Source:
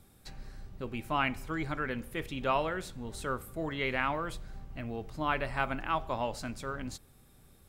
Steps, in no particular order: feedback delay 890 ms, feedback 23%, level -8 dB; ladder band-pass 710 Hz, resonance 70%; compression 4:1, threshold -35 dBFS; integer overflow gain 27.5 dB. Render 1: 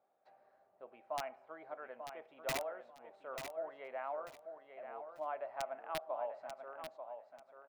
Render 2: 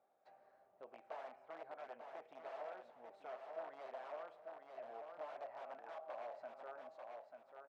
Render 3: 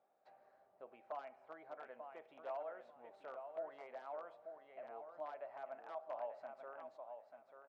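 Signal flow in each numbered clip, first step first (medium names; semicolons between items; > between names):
ladder band-pass > integer overflow > compression > feedback delay; integer overflow > feedback delay > compression > ladder band-pass; compression > feedback delay > integer overflow > ladder band-pass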